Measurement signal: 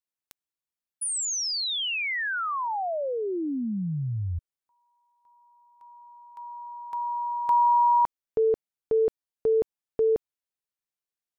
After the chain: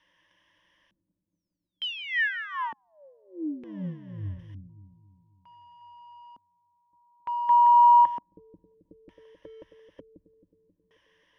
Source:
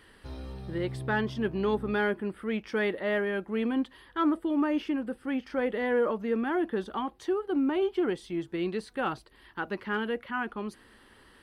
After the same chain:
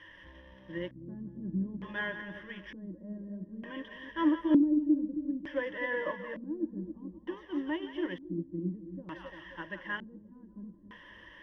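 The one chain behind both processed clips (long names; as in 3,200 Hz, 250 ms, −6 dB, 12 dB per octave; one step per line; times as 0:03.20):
converter with a step at zero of −39 dBFS
EQ curve with evenly spaced ripples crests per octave 1.2, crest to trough 17 dB
echo with a time of its own for lows and highs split 720 Hz, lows 268 ms, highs 172 ms, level −7 dB
auto-filter low-pass square 0.55 Hz 240–2,400 Hz
expander for the loud parts 1.5 to 1, over −35 dBFS
level −6.5 dB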